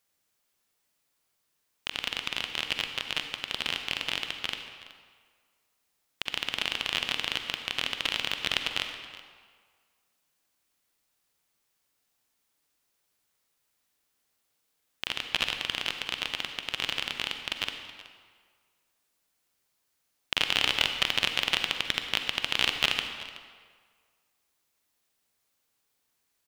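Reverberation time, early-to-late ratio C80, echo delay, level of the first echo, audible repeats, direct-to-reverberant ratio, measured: 1.7 s, 7.5 dB, 374 ms, −18.0 dB, 1, 5.5 dB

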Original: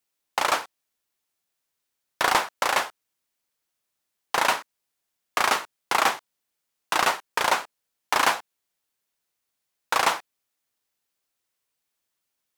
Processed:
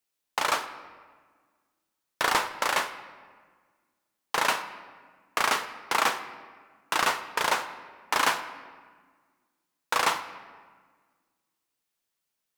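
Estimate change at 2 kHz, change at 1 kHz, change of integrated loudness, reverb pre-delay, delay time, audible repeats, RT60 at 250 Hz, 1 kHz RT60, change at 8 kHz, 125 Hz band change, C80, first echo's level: −2.0 dB, −3.0 dB, −3.0 dB, 4 ms, no echo audible, no echo audible, 2.0 s, 1.5 s, −2.5 dB, −1.5 dB, 13.5 dB, no echo audible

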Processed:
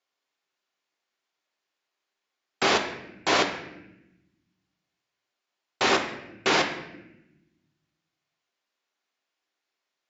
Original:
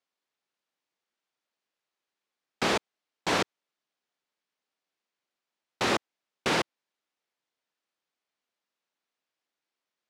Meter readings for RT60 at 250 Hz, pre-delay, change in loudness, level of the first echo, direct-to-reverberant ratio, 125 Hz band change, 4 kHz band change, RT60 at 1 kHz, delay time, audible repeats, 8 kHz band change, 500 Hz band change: 1.6 s, 3 ms, +4.5 dB, no echo audible, 3.5 dB, −1.0 dB, +5.5 dB, 0.80 s, no echo audible, no echo audible, +4.0 dB, +4.0 dB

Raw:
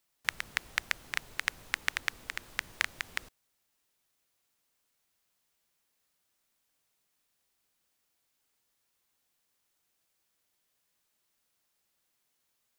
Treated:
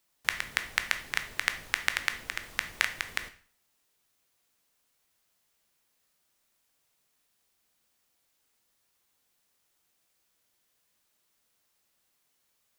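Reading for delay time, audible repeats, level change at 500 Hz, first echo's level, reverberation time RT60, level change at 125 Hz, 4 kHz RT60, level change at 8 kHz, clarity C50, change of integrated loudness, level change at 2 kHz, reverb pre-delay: no echo audible, no echo audible, +4.0 dB, no echo audible, 0.45 s, +3.5 dB, 0.45 s, +3.5 dB, 12.5 dB, +3.5 dB, +3.5 dB, 6 ms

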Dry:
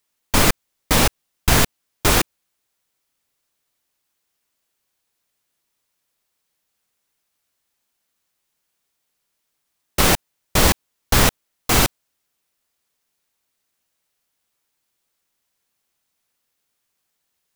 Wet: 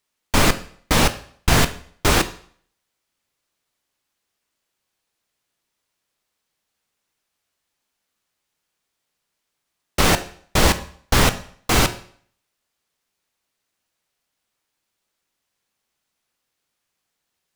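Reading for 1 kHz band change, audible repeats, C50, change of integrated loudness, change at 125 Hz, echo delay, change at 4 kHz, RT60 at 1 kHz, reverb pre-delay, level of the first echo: +0.5 dB, no echo audible, 14.5 dB, −1.0 dB, +0.5 dB, no echo audible, −0.5 dB, 0.55 s, 11 ms, no echo audible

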